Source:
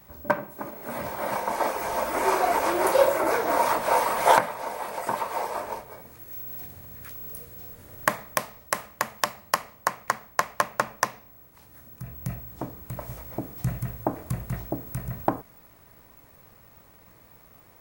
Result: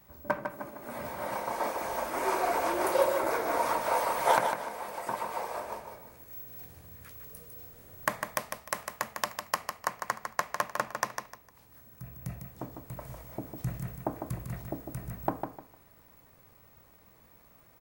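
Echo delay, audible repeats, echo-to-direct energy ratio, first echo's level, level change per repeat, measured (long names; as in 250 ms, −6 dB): 152 ms, 3, −6.0 dB, −6.5 dB, −11.5 dB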